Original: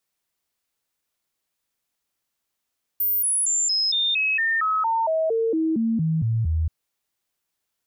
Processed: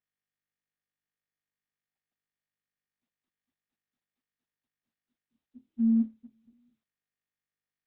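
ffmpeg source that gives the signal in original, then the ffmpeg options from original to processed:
-f lavfi -i "aevalsrc='0.112*clip(min(mod(t,0.23),0.23-mod(t,0.23))/0.005,0,1)*sin(2*PI*14500*pow(2,-floor(t/0.23)/2)*mod(t,0.23))':duration=3.68:sample_rate=44100"
-af "aeval=exprs='0.119*(cos(1*acos(clip(val(0)/0.119,-1,1)))-cos(1*PI/2))+0.00133*(cos(2*acos(clip(val(0)/0.119,-1,1)))-cos(2*PI/2))+0.000944*(cos(3*acos(clip(val(0)/0.119,-1,1)))-cos(3*PI/2))+0.0015*(cos(4*acos(clip(val(0)/0.119,-1,1)))-cos(4*PI/2))':channel_layout=same,asuperpass=centerf=240:order=12:qfactor=6.1" -ar 48000 -c:a libopus -b:a 6k

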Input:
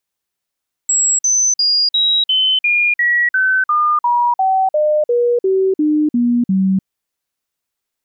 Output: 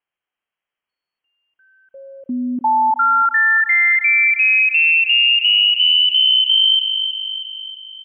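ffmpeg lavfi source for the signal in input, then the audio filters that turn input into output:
-f lavfi -i "aevalsrc='0.282*clip(min(mod(t,0.35),0.3-mod(t,0.35))/0.005,0,1)*sin(2*PI*7690*pow(2,-floor(t/0.35)/3)*mod(t,0.35))':duration=5.95:sample_rate=44100"
-filter_complex "[0:a]asplit=2[link_01][link_02];[link_02]adelay=318,lowpass=frequency=1600:poles=1,volume=-7dB,asplit=2[link_03][link_04];[link_04]adelay=318,lowpass=frequency=1600:poles=1,volume=0.55,asplit=2[link_05][link_06];[link_06]adelay=318,lowpass=frequency=1600:poles=1,volume=0.55,asplit=2[link_07][link_08];[link_08]adelay=318,lowpass=frequency=1600:poles=1,volume=0.55,asplit=2[link_09][link_10];[link_10]adelay=318,lowpass=frequency=1600:poles=1,volume=0.55,asplit=2[link_11][link_12];[link_12]adelay=318,lowpass=frequency=1600:poles=1,volume=0.55,asplit=2[link_13][link_14];[link_14]adelay=318,lowpass=frequency=1600:poles=1,volume=0.55[link_15];[link_03][link_05][link_07][link_09][link_11][link_13][link_15]amix=inputs=7:normalize=0[link_16];[link_01][link_16]amix=inputs=2:normalize=0,lowpass=frequency=2800:width_type=q:width=0.5098,lowpass=frequency=2800:width_type=q:width=0.6013,lowpass=frequency=2800:width_type=q:width=0.9,lowpass=frequency=2800:width_type=q:width=2.563,afreqshift=-3300"

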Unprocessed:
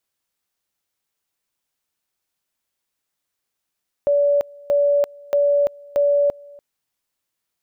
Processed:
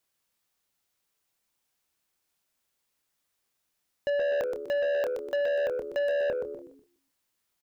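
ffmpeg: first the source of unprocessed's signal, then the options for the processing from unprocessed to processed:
-f lavfi -i "aevalsrc='pow(10,(-13.5-25.5*gte(mod(t,0.63),0.34))/20)*sin(2*PI*574*t)':duration=2.52:sample_rate=44100"
-filter_complex "[0:a]asplit=2[link_01][link_02];[link_02]adelay=27,volume=-9.5dB[link_03];[link_01][link_03]amix=inputs=2:normalize=0,asplit=5[link_04][link_05][link_06][link_07][link_08];[link_05]adelay=123,afreqshift=-75,volume=-9dB[link_09];[link_06]adelay=246,afreqshift=-150,volume=-18.4dB[link_10];[link_07]adelay=369,afreqshift=-225,volume=-27.7dB[link_11];[link_08]adelay=492,afreqshift=-300,volume=-37.1dB[link_12];[link_04][link_09][link_10][link_11][link_12]amix=inputs=5:normalize=0,asoftclip=type=tanh:threshold=-25dB"

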